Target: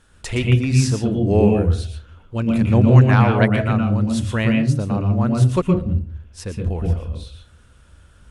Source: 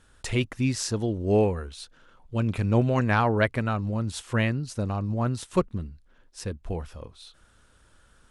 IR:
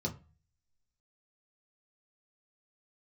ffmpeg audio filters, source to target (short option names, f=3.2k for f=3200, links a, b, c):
-filter_complex "[0:a]asplit=2[a][b];[1:a]atrim=start_sample=2205,asetrate=24255,aresample=44100,adelay=116[c];[b][c]afir=irnorm=-1:irlink=0,volume=-8.5dB[d];[a][d]amix=inputs=2:normalize=0,volume=3dB"